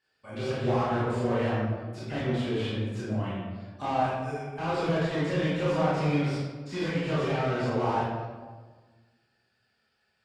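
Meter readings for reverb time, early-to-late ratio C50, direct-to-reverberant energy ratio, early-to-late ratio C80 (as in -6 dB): 1.4 s, -2.0 dB, -8.5 dB, 1.0 dB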